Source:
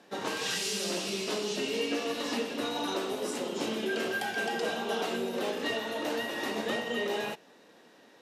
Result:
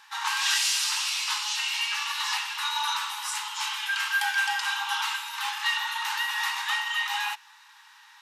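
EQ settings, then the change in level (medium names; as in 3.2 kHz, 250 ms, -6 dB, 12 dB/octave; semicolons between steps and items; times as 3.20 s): brick-wall FIR high-pass 800 Hz; +8.5 dB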